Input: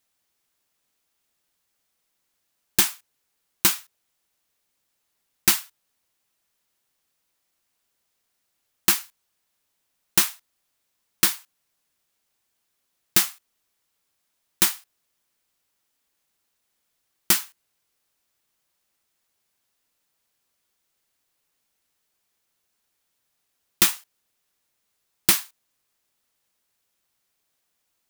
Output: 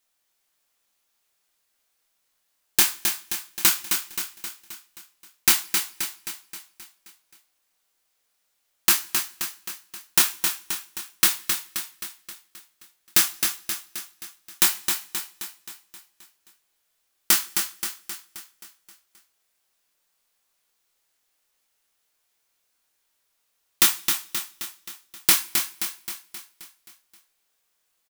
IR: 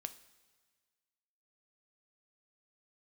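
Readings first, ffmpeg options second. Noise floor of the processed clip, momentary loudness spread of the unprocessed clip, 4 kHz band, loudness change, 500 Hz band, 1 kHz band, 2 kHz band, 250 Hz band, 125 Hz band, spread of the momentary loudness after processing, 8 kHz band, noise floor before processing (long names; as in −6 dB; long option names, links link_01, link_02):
−73 dBFS, 6 LU, +2.5 dB, −1.5 dB, −1.0 dB, +2.0 dB, +2.5 dB, −2.5 dB, −5.5 dB, 21 LU, +2.5 dB, −76 dBFS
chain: -filter_complex "[0:a]equalizer=frequency=140:width=0.61:gain=-9.5,asplit=2[link_01][link_02];[link_02]adelay=24,volume=-6dB[link_03];[link_01][link_03]amix=inputs=2:normalize=0,aecho=1:1:264|528|792|1056|1320|1584|1848:0.501|0.271|0.146|0.0789|0.0426|0.023|0.0124,asplit=2[link_04][link_05];[1:a]atrim=start_sample=2205,asetrate=66150,aresample=44100[link_06];[link_05][link_06]afir=irnorm=-1:irlink=0,volume=8.5dB[link_07];[link_04][link_07]amix=inputs=2:normalize=0,volume=-6.5dB"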